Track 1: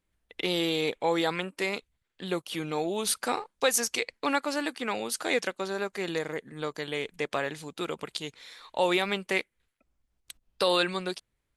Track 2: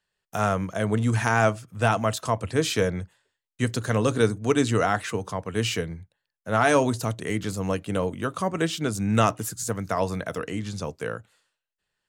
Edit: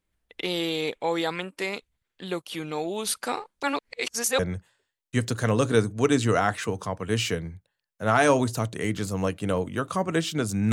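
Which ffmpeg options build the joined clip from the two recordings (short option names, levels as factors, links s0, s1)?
-filter_complex "[0:a]apad=whole_dur=10.72,atrim=end=10.72,asplit=2[s0][s1];[s0]atrim=end=3.632[s2];[s1]atrim=start=3.628:end=4.392,asetpts=PTS-STARTPTS,areverse[s3];[1:a]atrim=start=2.848:end=9.18[s4];[s2][s3]acrossfade=d=0.004:c1=hsin:c2=hsin[s5];[s5][s4]acrossfade=d=0.004:c1=hsin:c2=hsin"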